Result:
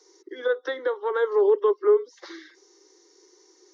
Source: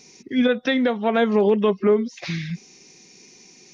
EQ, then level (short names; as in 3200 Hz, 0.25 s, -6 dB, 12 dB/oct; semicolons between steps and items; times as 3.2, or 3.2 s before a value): steep high-pass 310 Hz 96 dB/oct; LPF 2400 Hz 6 dB/oct; fixed phaser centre 670 Hz, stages 6; 0.0 dB